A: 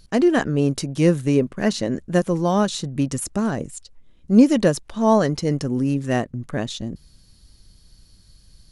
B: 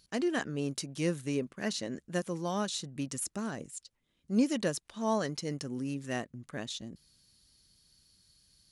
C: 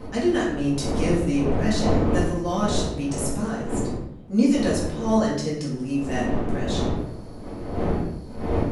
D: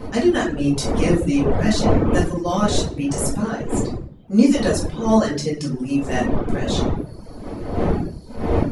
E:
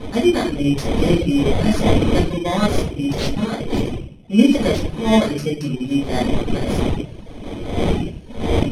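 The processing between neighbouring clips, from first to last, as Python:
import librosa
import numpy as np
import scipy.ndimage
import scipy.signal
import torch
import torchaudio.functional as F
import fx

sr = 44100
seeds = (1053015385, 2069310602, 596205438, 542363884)

y1 = fx.highpass(x, sr, hz=330.0, slope=6)
y1 = fx.peak_eq(y1, sr, hz=640.0, db=-6.5, octaves=2.8)
y1 = y1 * librosa.db_to_amplitude(-6.5)
y2 = fx.dmg_wind(y1, sr, seeds[0], corner_hz=430.0, level_db=-37.0)
y2 = fx.room_shoebox(y2, sr, seeds[1], volume_m3=170.0, walls='mixed', distance_m=2.0)
y3 = fx.dereverb_blind(y2, sr, rt60_s=0.74)
y3 = y3 * librosa.db_to_amplitude(5.5)
y4 = fx.bit_reversed(y3, sr, seeds[2], block=16)
y4 = scipy.signal.sosfilt(scipy.signal.butter(2, 5600.0, 'lowpass', fs=sr, output='sos'), y4)
y4 = y4 * librosa.db_to_amplitude(1.5)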